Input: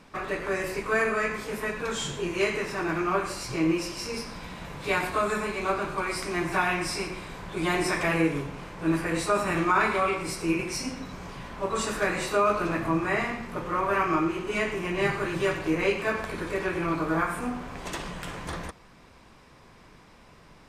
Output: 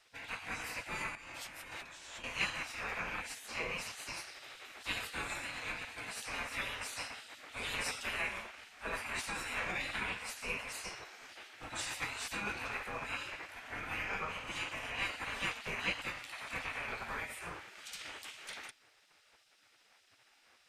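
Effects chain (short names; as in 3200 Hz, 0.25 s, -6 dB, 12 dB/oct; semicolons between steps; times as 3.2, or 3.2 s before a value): spectral gate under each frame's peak -15 dB weak; dynamic EQ 2400 Hz, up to +5 dB, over -50 dBFS, Q 0.9; 1.15–2.24 negative-ratio compressor -44 dBFS, ratio -1; gain -5.5 dB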